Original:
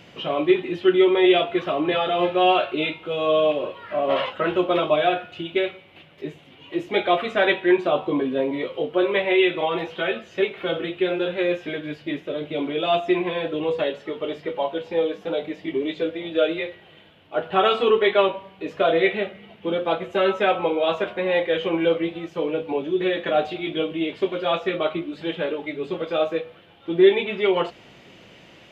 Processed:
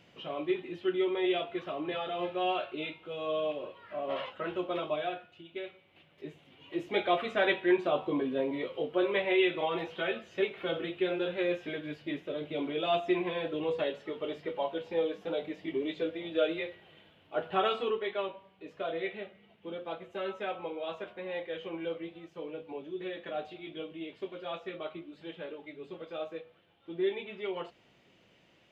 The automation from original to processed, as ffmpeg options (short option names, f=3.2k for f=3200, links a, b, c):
-af "volume=-1dB,afade=t=out:st=4.92:d=0.51:silence=0.446684,afade=t=in:st=5.43:d=1.43:silence=0.251189,afade=t=out:st=17.45:d=0.58:silence=0.398107"